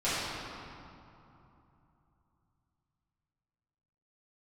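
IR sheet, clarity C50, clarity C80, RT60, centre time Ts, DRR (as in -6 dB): -4.0 dB, -1.5 dB, 2.9 s, 0.171 s, -14.0 dB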